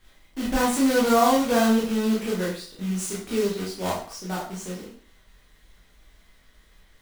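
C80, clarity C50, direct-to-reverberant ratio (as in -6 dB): 9.5 dB, 5.0 dB, -5.0 dB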